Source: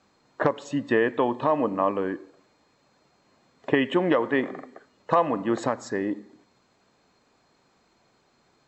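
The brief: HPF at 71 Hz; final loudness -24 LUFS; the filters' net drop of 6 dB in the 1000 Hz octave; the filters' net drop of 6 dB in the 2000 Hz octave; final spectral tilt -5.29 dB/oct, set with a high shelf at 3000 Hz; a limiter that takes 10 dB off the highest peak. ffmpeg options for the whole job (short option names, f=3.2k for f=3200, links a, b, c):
-af "highpass=71,equalizer=f=1k:t=o:g=-6.5,equalizer=f=2k:t=o:g=-7.5,highshelf=f=3k:g=7.5,volume=7dB,alimiter=limit=-12.5dB:level=0:latency=1"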